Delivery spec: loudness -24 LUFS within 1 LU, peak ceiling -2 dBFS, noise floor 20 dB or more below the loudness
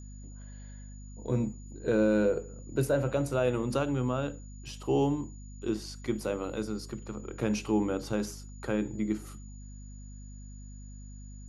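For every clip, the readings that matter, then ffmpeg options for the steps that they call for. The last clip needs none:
hum 50 Hz; highest harmonic 250 Hz; hum level -42 dBFS; steady tone 6.9 kHz; tone level -56 dBFS; loudness -31.5 LUFS; peak level -15.5 dBFS; loudness target -24.0 LUFS
-> -af "bandreject=f=50:t=h:w=6,bandreject=f=100:t=h:w=6,bandreject=f=150:t=h:w=6,bandreject=f=200:t=h:w=6,bandreject=f=250:t=h:w=6"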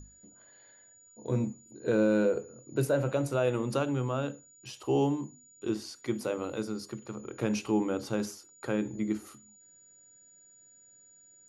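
hum not found; steady tone 6.9 kHz; tone level -56 dBFS
-> -af "bandreject=f=6900:w=30"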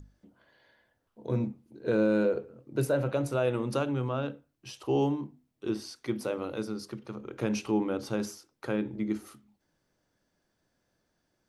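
steady tone not found; loudness -31.5 LUFS; peak level -15.5 dBFS; loudness target -24.0 LUFS
-> -af "volume=2.37"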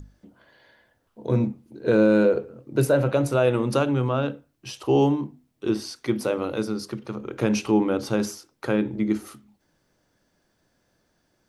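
loudness -24.0 LUFS; peak level -8.0 dBFS; noise floor -70 dBFS

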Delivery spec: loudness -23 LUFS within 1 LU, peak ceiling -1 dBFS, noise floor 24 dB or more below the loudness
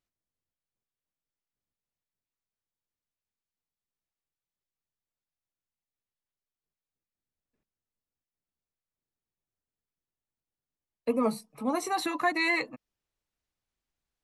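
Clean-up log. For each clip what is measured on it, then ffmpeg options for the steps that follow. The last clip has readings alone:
loudness -29.5 LUFS; peak level -13.5 dBFS; loudness target -23.0 LUFS
-> -af "volume=2.11"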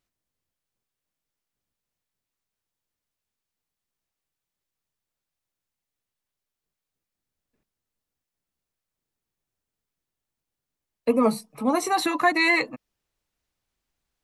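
loudness -23.0 LUFS; peak level -7.0 dBFS; noise floor -87 dBFS

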